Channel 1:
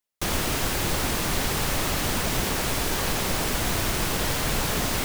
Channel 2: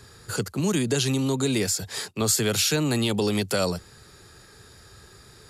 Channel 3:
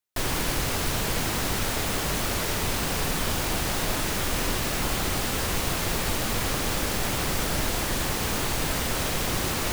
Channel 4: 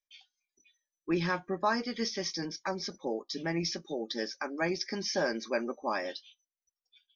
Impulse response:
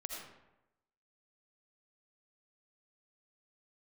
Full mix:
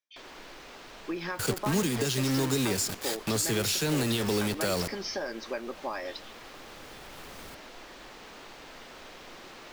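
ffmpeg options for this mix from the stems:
-filter_complex "[0:a]alimiter=limit=-22dB:level=0:latency=1,adelay=2500,volume=-15dB[a];[1:a]acrusher=bits=4:mix=0:aa=0.000001,adelay=1100,volume=-3dB,asplit=2[b][c];[c]volume=-16dB[d];[2:a]volume=-18.5dB,asplit=2[e][f];[f]volume=-9.5dB[g];[3:a]volume=2.5dB,asplit=2[h][i];[i]apad=whole_len=332763[j];[a][j]sidechaincompress=threshold=-42dB:ratio=8:attack=16:release=1310[k];[e][h]amix=inputs=2:normalize=0,highpass=260,lowpass=5.3k,acompressor=threshold=-31dB:ratio=6,volume=0dB[l];[4:a]atrim=start_sample=2205[m];[d][g]amix=inputs=2:normalize=0[n];[n][m]afir=irnorm=-1:irlink=0[o];[k][b][l][o]amix=inputs=4:normalize=0,alimiter=limit=-18dB:level=0:latency=1:release=152"

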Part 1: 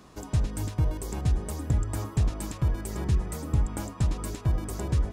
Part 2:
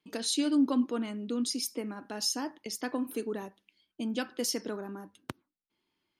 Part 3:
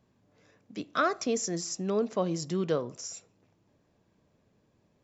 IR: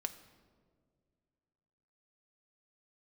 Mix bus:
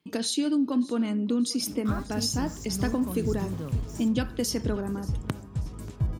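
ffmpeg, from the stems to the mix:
-filter_complex "[0:a]adelay=1550,volume=-11dB,asplit=2[a][b];[b]volume=-8dB[c];[1:a]acompressor=threshold=-30dB:ratio=6,volume=2.5dB,asplit=4[d][e][f][g];[e]volume=-12.5dB[h];[f]volume=-18.5dB[i];[2:a]equalizer=f=125:t=o:w=1:g=9,equalizer=f=250:t=o:w=1:g=10,equalizer=f=500:t=o:w=1:g=-4,equalizer=f=1k:t=o:w=1:g=7,equalizer=f=8k:t=o:w=1:g=10,acrusher=bits=5:mix=0:aa=0.000001,adelay=900,volume=-17dB,asplit=2[j][k];[k]volume=-19dB[l];[g]apad=whole_len=294258[m];[a][m]sidechaincompress=threshold=-43dB:ratio=3:attack=16:release=788[n];[3:a]atrim=start_sample=2205[o];[c][h]amix=inputs=2:normalize=0[p];[p][o]afir=irnorm=-1:irlink=0[q];[i][l]amix=inputs=2:normalize=0,aecho=0:1:585|1170|1755|2340|2925|3510:1|0.44|0.194|0.0852|0.0375|0.0165[r];[n][d][j][q][r]amix=inputs=5:normalize=0,equalizer=f=120:w=0.67:g=10"

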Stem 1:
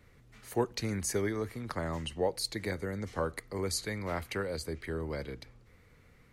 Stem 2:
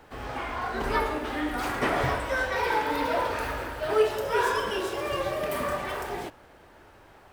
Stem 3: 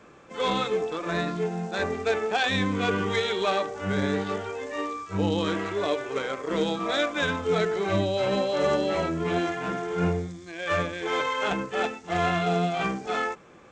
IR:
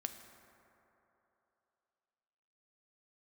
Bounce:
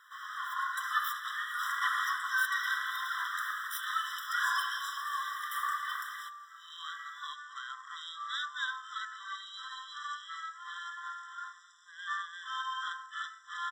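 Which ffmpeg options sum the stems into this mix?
-filter_complex "[0:a]highpass=f=960:p=1,aeval=exprs='abs(val(0))':c=same,volume=2.5dB,asplit=2[a][b];[1:a]volume=0dB[c];[2:a]adelay=1400,volume=-9dB,asplit=2[d][e];[e]volume=-7dB[f];[b]apad=whole_len=666438[g];[d][g]sidechaincompress=threshold=-58dB:ratio=8:attack=16:release=1230[h];[3:a]atrim=start_sample=2205[i];[f][i]afir=irnorm=-1:irlink=0[j];[a][c][h][j]amix=inputs=4:normalize=0,afftfilt=real='re*eq(mod(floor(b*sr/1024/1000),2),1)':imag='im*eq(mod(floor(b*sr/1024/1000),2),1)':win_size=1024:overlap=0.75"

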